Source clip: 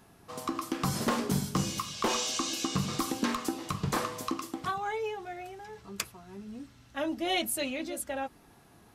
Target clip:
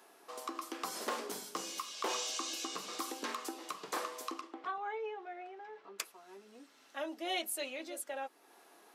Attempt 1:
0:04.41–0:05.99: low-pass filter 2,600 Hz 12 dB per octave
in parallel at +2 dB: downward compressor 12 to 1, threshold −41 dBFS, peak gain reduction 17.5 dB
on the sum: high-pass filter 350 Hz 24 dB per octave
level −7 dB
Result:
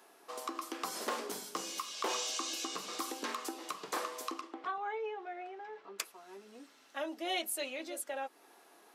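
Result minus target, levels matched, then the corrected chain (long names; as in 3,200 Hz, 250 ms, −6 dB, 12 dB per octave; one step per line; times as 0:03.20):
downward compressor: peak gain reduction −7.5 dB
0:04.41–0:05.99: low-pass filter 2,600 Hz 12 dB per octave
in parallel at +2 dB: downward compressor 12 to 1, threshold −49 dBFS, peak gain reduction 24.5 dB
on the sum: high-pass filter 350 Hz 24 dB per octave
level −7 dB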